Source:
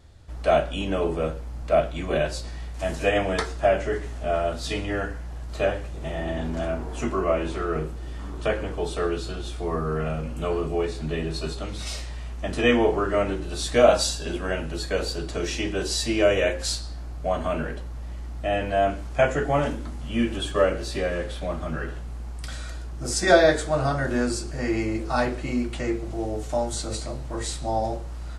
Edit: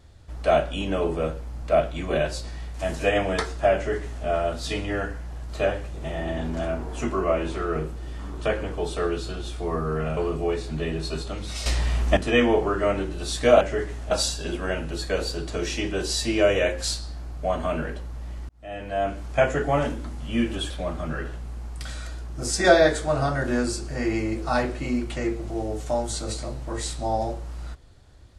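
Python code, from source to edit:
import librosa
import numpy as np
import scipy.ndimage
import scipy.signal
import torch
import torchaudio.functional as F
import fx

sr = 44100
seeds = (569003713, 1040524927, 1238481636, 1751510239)

y = fx.edit(x, sr, fx.duplicate(start_s=3.75, length_s=0.5, to_s=13.92),
    fx.cut(start_s=10.17, length_s=0.31),
    fx.clip_gain(start_s=11.97, length_s=0.51, db=11.0),
    fx.fade_in_span(start_s=18.3, length_s=0.8),
    fx.cut(start_s=20.51, length_s=0.82), tone=tone)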